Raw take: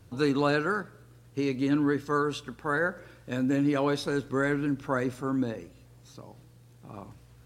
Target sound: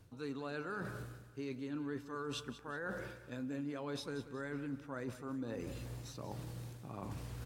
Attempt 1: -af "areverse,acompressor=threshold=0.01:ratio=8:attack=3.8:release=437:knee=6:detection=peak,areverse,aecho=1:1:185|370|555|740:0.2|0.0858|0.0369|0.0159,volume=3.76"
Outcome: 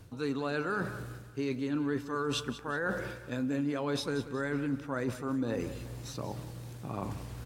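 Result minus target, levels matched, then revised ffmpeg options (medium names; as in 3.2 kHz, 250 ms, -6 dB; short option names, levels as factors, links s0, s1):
compression: peak gain reduction -9 dB
-af "areverse,acompressor=threshold=0.00299:ratio=8:attack=3.8:release=437:knee=6:detection=peak,areverse,aecho=1:1:185|370|555|740:0.2|0.0858|0.0369|0.0159,volume=3.76"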